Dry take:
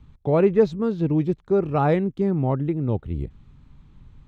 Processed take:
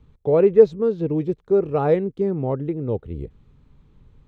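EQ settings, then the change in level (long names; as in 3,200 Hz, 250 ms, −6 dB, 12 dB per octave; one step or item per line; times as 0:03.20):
parametric band 460 Hz +10.5 dB 0.61 octaves
−4.0 dB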